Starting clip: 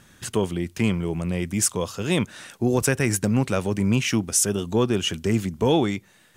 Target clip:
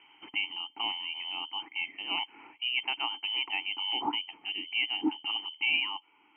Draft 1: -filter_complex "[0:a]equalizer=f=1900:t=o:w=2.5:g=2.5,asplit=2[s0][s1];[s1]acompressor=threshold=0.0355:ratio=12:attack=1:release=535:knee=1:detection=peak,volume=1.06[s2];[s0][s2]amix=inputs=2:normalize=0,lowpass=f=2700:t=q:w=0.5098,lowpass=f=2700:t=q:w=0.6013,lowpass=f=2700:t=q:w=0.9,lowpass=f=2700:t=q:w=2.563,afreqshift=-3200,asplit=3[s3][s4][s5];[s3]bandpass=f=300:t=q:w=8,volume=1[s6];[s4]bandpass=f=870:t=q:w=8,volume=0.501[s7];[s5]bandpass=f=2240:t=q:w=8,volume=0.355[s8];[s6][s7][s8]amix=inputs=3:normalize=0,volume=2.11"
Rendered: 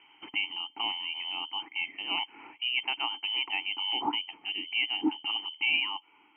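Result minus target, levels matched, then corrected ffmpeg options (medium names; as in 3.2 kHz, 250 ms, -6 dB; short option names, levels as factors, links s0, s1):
compression: peak gain reduction -10 dB
-filter_complex "[0:a]equalizer=f=1900:t=o:w=2.5:g=2.5,asplit=2[s0][s1];[s1]acompressor=threshold=0.01:ratio=12:attack=1:release=535:knee=1:detection=peak,volume=1.06[s2];[s0][s2]amix=inputs=2:normalize=0,lowpass=f=2700:t=q:w=0.5098,lowpass=f=2700:t=q:w=0.6013,lowpass=f=2700:t=q:w=0.9,lowpass=f=2700:t=q:w=2.563,afreqshift=-3200,asplit=3[s3][s4][s5];[s3]bandpass=f=300:t=q:w=8,volume=1[s6];[s4]bandpass=f=870:t=q:w=8,volume=0.501[s7];[s5]bandpass=f=2240:t=q:w=8,volume=0.355[s8];[s6][s7][s8]amix=inputs=3:normalize=0,volume=2.11"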